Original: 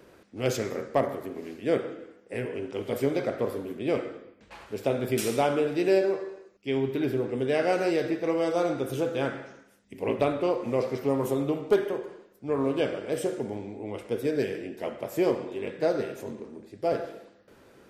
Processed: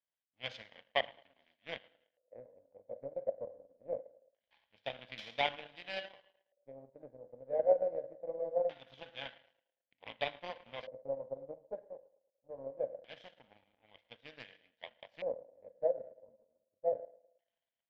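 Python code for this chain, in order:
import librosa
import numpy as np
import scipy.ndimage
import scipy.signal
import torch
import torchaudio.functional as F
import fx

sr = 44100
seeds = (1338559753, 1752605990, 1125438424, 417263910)

p1 = fx.low_shelf(x, sr, hz=410.0, db=-11.5)
p2 = fx.fixed_phaser(p1, sr, hz=1900.0, stages=8)
p3 = p2 + fx.echo_banded(p2, sr, ms=109, feedback_pct=73, hz=590.0, wet_db=-14.0, dry=0)
p4 = fx.power_curve(p3, sr, exponent=2.0)
p5 = fx.filter_lfo_lowpass(p4, sr, shape='square', hz=0.23, low_hz=540.0, high_hz=3100.0, q=6.4)
y = F.gain(torch.from_numpy(p5), 1.0).numpy()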